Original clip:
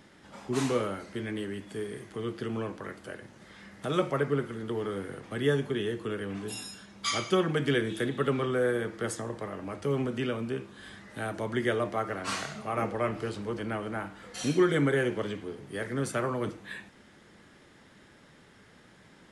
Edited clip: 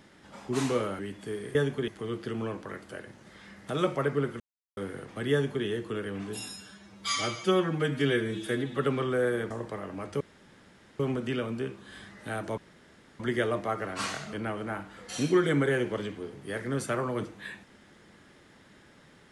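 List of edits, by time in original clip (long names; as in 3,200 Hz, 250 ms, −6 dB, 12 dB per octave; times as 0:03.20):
0:00.99–0:01.47: remove
0:04.55–0:04.92: silence
0:05.47–0:05.80: duplicate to 0:02.03
0:06.72–0:08.19: time-stretch 1.5×
0:08.92–0:09.20: remove
0:09.90: splice in room tone 0.79 s
0:11.48: splice in room tone 0.62 s
0:12.61–0:13.58: remove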